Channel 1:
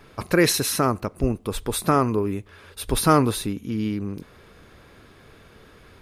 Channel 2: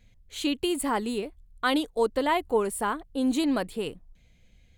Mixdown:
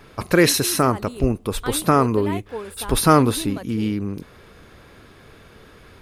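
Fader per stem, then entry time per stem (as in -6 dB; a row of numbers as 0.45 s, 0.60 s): +3.0 dB, -7.0 dB; 0.00 s, 0.00 s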